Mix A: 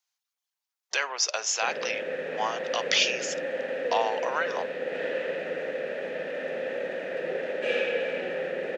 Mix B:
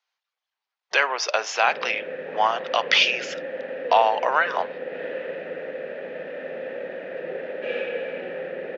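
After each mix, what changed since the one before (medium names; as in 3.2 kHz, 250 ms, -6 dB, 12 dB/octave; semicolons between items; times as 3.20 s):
speech +10.0 dB; master: add distance through air 240 m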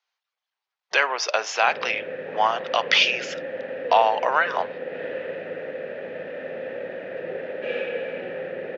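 master: add peaking EQ 100 Hz +10.5 dB 0.78 oct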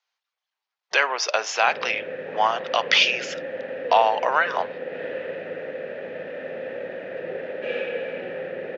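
master: add treble shelf 9.2 kHz +6.5 dB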